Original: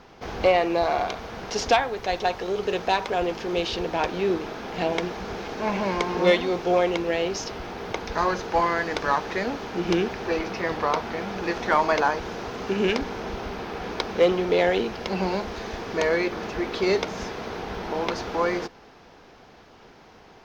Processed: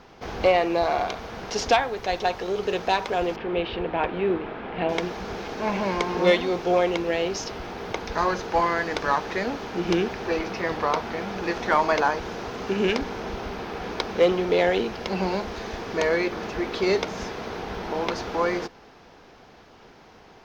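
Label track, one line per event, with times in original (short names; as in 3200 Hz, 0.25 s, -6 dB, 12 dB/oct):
3.360000	4.890000	LPF 3000 Hz 24 dB/oct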